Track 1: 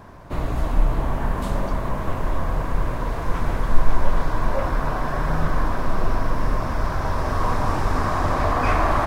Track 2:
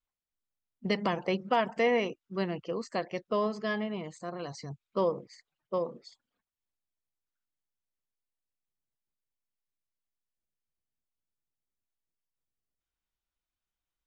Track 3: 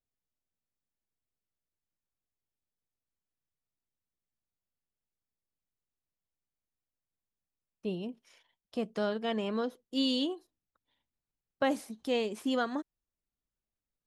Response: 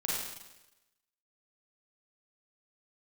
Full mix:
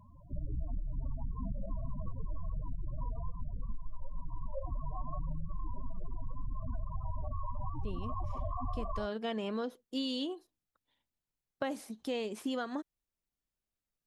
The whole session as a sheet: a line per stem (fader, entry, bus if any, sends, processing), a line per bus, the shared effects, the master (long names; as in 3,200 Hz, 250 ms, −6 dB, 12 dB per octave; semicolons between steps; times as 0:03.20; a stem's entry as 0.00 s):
−9.5 dB, 0.00 s, bus A, no send, automatic gain control gain up to 5 dB
muted
−0.5 dB, 0.00 s, no bus, no send, no processing
bus A: 0.0 dB, spectral peaks only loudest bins 8; downward compressor, threshold −25 dBFS, peak gain reduction 11 dB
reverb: not used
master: downward compressor, threshold −32 dBFS, peak gain reduction 8.5 dB